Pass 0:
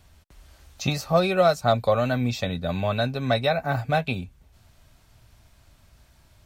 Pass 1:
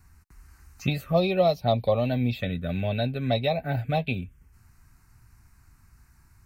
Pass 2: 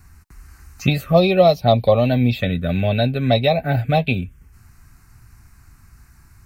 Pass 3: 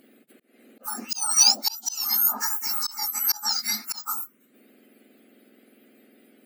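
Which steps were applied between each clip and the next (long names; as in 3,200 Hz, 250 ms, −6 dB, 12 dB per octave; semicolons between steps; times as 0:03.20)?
dynamic equaliser 7,500 Hz, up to −7 dB, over −50 dBFS, Q 0.87; phaser swept by the level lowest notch 570 Hz, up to 1,500 Hz, full sweep at −18 dBFS
notch filter 930 Hz, Q 17; level +8.5 dB
frequency axis turned over on the octave scale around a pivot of 1,800 Hz; volume swells 295 ms; parametric band 11,000 Hz +10 dB 2.4 octaves; level −4 dB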